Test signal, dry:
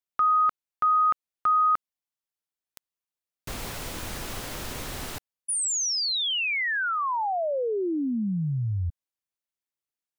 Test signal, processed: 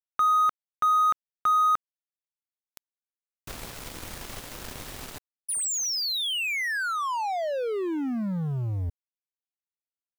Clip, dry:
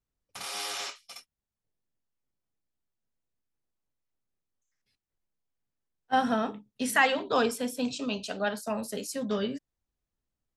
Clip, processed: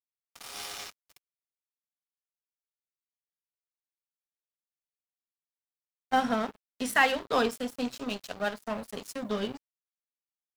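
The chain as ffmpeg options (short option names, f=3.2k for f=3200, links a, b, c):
-af "aeval=exprs='sgn(val(0))*max(abs(val(0))-0.0133,0)':c=same,acrusher=bits=10:mix=0:aa=0.000001,volume=1dB"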